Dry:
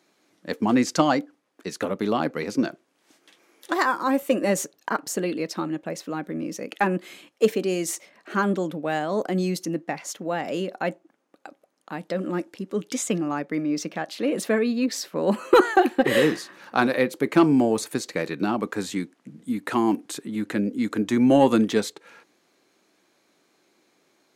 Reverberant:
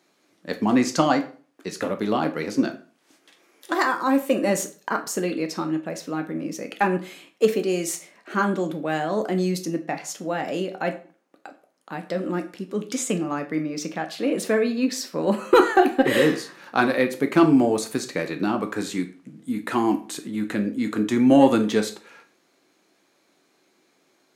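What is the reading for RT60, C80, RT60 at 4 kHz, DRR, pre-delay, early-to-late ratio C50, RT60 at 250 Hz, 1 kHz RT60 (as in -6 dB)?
0.40 s, 17.5 dB, 0.35 s, 6.5 dB, 9 ms, 13.5 dB, 0.45 s, 0.40 s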